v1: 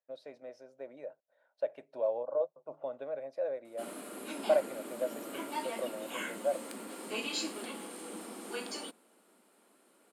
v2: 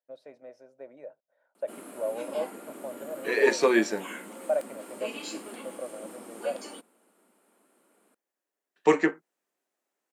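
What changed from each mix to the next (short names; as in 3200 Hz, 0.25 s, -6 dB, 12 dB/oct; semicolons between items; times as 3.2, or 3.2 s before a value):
second voice: unmuted; background: entry -2.10 s; master: add bell 4200 Hz -6 dB 1.1 oct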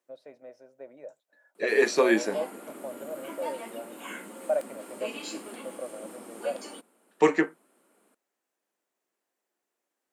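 second voice: entry -1.65 s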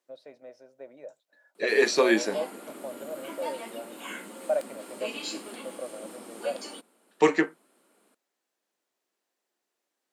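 master: add bell 4200 Hz +6 dB 1.1 oct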